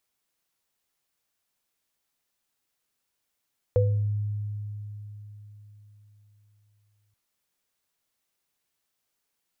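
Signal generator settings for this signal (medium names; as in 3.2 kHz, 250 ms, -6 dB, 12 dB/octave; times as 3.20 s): sine partials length 3.38 s, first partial 104 Hz, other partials 498 Hz, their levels 2 dB, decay 4.11 s, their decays 0.39 s, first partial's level -19 dB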